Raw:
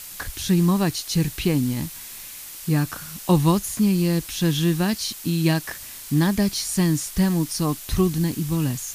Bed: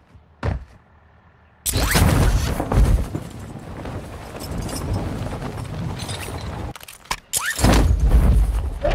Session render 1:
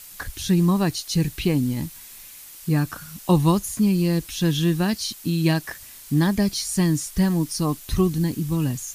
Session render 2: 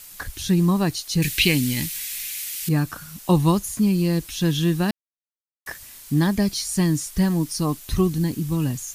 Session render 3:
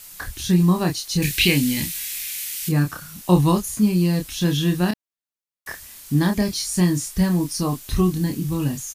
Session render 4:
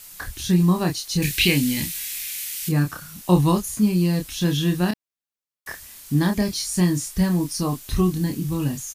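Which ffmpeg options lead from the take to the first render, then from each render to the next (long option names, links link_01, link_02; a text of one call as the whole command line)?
ffmpeg -i in.wav -af "afftdn=noise_reduction=6:noise_floor=-38" out.wav
ffmpeg -i in.wav -filter_complex "[0:a]asettb=1/sr,asplit=3[link_01][link_02][link_03];[link_01]atrim=end=1.224[link_04];[link_02]atrim=start=1.22:end=2.69,asetpts=PTS-STARTPTS,afade=type=in:duration=0.004:curve=qsin,afade=type=out:start_time=1.466:duration=0.004:curve=qsin,highshelf=frequency=1500:width_type=q:width=1.5:gain=11.5[link_05];[link_03]atrim=start=2.686[link_06];[link_04][link_05]acrossfade=duration=0.004:curve1=hsin:curve2=qsin[link_07];[link_07][link_06]acrossfade=duration=0.004:curve1=qsin:curve2=hsin,asplit=3[link_08][link_09][link_10];[link_08]atrim=end=4.91,asetpts=PTS-STARTPTS,afade=type=out:start_time=4.906:duration=0.004:curve=hsin[link_11];[link_09]atrim=start=4.91:end=5.66,asetpts=PTS-STARTPTS,volume=0[link_12];[link_10]atrim=start=5.66,asetpts=PTS-STARTPTS,afade=type=in:duration=0.004:curve=hsin[link_13];[link_11][link_12][link_13]concat=n=3:v=0:a=1" out.wav
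ffmpeg -i in.wav -filter_complex "[0:a]asplit=2[link_01][link_02];[link_02]adelay=28,volume=-5dB[link_03];[link_01][link_03]amix=inputs=2:normalize=0" out.wav
ffmpeg -i in.wav -af "volume=-1dB" out.wav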